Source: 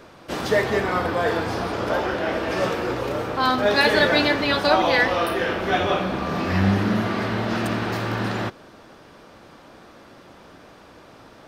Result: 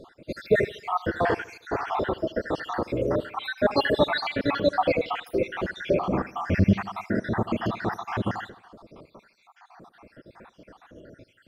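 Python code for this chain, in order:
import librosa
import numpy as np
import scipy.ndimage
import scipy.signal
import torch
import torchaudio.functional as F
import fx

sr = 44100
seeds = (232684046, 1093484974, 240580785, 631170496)

y = fx.spec_dropout(x, sr, seeds[0], share_pct=72)
y = fx.high_shelf(y, sr, hz=3000.0, db=-11.5)
y = fx.echo_feedback(y, sr, ms=77, feedback_pct=51, wet_db=-19.0)
y = y * librosa.db_to_amplitude(2.5)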